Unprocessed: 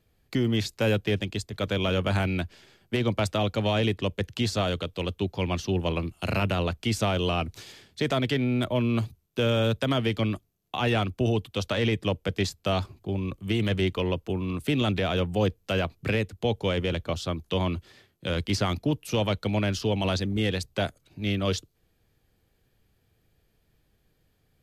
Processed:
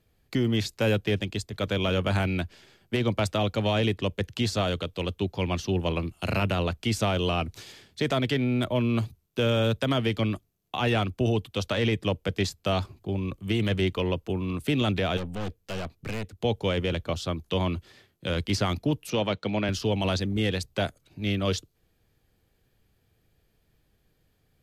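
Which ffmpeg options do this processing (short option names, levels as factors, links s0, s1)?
-filter_complex "[0:a]asettb=1/sr,asplit=3[s0][s1][s2];[s0]atrim=end=15.174[s3];[s1]atrim=start=15.17:end=16.4,asetpts=PTS-STARTPTS,afade=t=in:d=0.004:c=qsin,afade=t=out:st=1.226:d=0.004:c=qsin,aeval=exprs='(tanh(31.6*val(0)+0.6)-tanh(0.6))/31.6':c=same[s4];[s2]atrim=start=16.396[s5];[s3][s4]acrossfade=d=0.004:c1=hsin:c2=qsin[s6];[s6][s5]acrossfade=d=0.004:c1=qsin:c2=hsin,asettb=1/sr,asplit=3[s7][s8][s9];[s7]atrim=end=19.104[s10];[s8]atrim=start=19.1:end=19.69,asetpts=PTS-STARTPTS,afade=t=in:d=0.004:c=qsin,afade=t=out:st=0.586:d=0.004:c=qsin,highpass=140,lowpass=5300[s11];[s9]atrim=start=19.686[s12];[s10][s11]acrossfade=d=0.004:c1=hsin:c2=qsin[s13];[s13][s12]acrossfade=d=0.004:c1=qsin:c2=hsin"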